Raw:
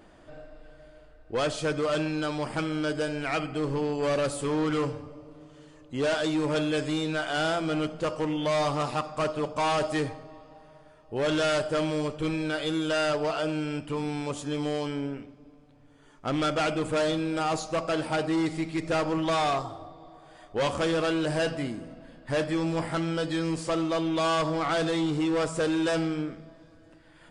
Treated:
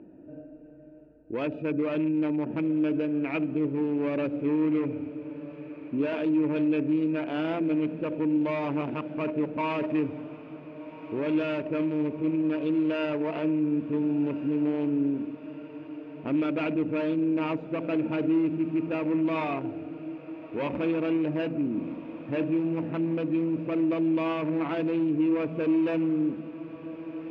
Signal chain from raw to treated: Wiener smoothing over 41 samples; tilt -3 dB/oct; notch 780 Hz, Q 12; limiter -24 dBFS, peak gain reduction 10 dB; BPF 200–3200 Hz; bell 2500 Hz +14.5 dB 0.48 oct; small resonant body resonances 290/920 Hz, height 8 dB, ringing for 25 ms; on a send: diffused feedback echo 1.447 s, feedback 72%, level -16 dB

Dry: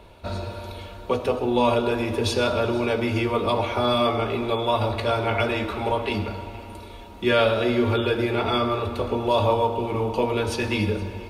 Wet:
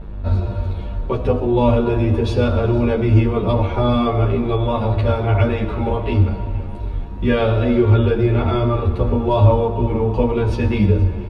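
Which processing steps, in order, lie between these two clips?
buzz 50 Hz, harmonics 38, -44 dBFS -5 dB/oct; RIAA curve playback; endless flanger 10.7 ms -2.7 Hz; gain +3.5 dB

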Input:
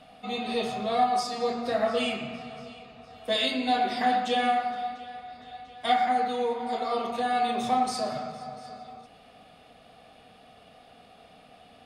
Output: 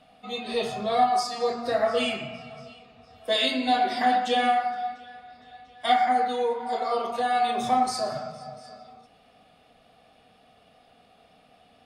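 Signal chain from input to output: spectral noise reduction 7 dB; gain +2.5 dB

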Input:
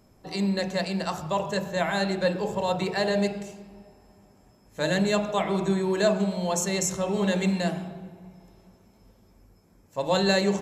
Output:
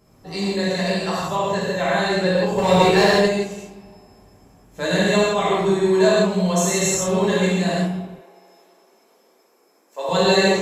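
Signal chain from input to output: 1.46–2.01 high shelf 5500 Hz -> 9400 Hz -7 dB; 2.58–3.11 sample leveller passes 2; 8.02–10.09 HPF 350 Hz 24 dB/oct; non-linear reverb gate 0.2 s flat, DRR -7.5 dB; gain -1 dB

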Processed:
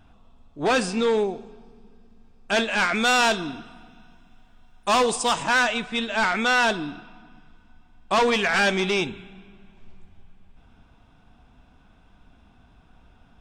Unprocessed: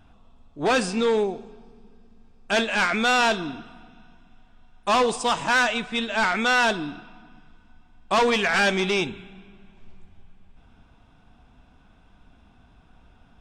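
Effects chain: 2.95–5.43 high shelf 6800 Hz +9 dB

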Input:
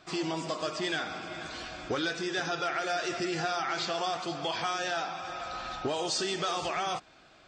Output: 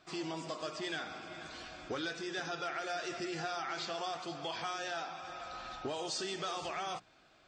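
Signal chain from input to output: notches 60/120/180 Hz; gain -7 dB

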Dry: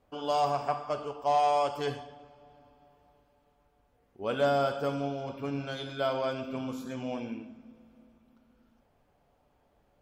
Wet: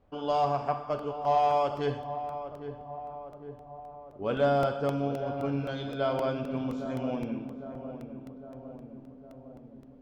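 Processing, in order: LPF 5500 Hz 12 dB/oct; tilt -1.5 dB/oct; on a send: darkening echo 0.807 s, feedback 66%, low-pass 1200 Hz, level -10 dB; on the sum: crackling interface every 0.26 s, samples 64, repeat, from 0.99

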